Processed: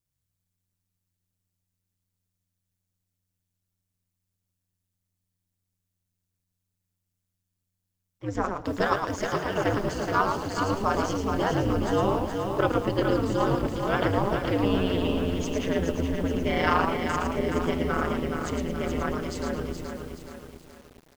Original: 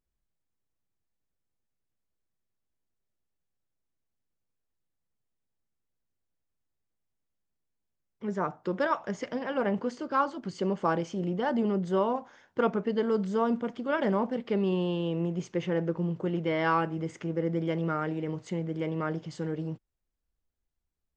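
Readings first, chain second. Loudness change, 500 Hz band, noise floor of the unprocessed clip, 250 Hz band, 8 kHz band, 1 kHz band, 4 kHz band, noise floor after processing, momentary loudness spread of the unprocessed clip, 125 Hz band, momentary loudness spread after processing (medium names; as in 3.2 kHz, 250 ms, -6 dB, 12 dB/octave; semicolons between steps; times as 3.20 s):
+3.5 dB, +3.0 dB, -83 dBFS, +2.5 dB, no reading, +4.5 dB, +8.5 dB, -83 dBFS, 7 LU, +4.0 dB, 7 LU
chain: treble shelf 3.6 kHz +12 dB; frequency-shifting echo 110 ms, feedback 31%, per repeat -85 Hz, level -5 dB; in parallel at -4.5 dB: crossover distortion -45.5 dBFS; on the sum: ring modulator 94 Hz; bit-crushed delay 423 ms, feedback 55%, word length 8-bit, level -5.5 dB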